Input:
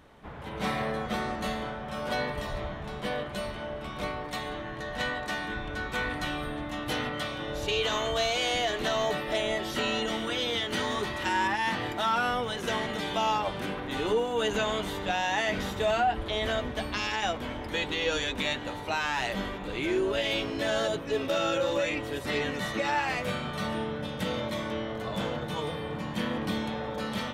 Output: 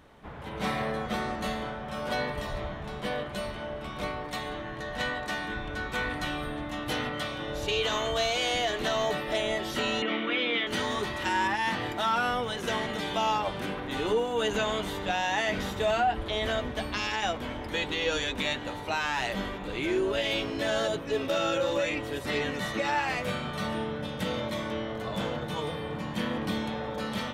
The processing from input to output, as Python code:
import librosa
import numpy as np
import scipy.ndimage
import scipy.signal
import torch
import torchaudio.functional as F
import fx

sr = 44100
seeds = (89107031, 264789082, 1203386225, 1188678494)

y = fx.cabinet(x, sr, low_hz=180.0, low_slope=24, high_hz=3500.0, hz=(290.0, 860.0, 1200.0, 2300.0), db=(6, -5, 4, 10), at=(10.02, 10.67))